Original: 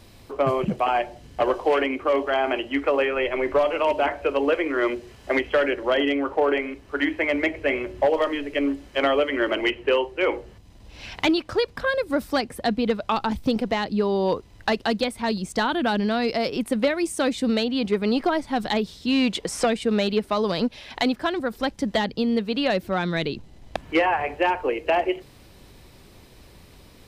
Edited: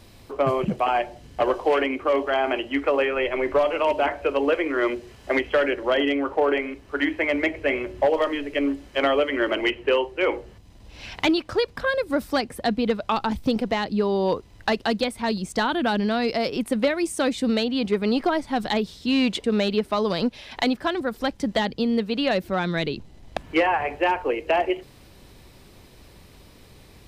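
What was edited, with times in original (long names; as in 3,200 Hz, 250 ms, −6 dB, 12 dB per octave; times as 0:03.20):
0:19.44–0:19.83: remove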